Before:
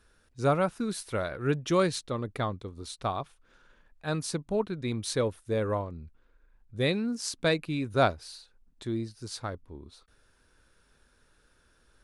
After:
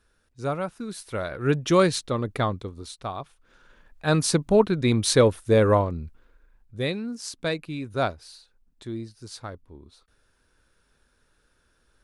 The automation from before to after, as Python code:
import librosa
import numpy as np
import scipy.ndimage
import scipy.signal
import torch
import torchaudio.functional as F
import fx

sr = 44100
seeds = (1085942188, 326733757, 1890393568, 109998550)

y = fx.gain(x, sr, db=fx.line((0.86, -3.0), (1.58, 6.0), (2.61, 6.0), (3.06, -2.0), (4.22, 10.5), (5.9, 10.5), (6.97, -1.5)))